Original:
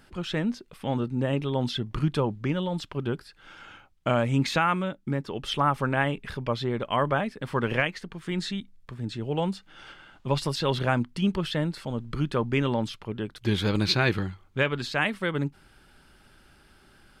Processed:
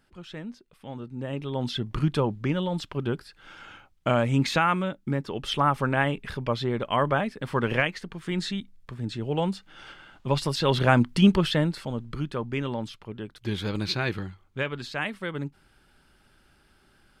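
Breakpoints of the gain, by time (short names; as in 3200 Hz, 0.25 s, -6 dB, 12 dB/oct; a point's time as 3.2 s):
0.96 s -10.5 dB
1.85 s +1 dB
10.5 s +1 dB
11.2 s +8 dB
12.33 s -4.5 dB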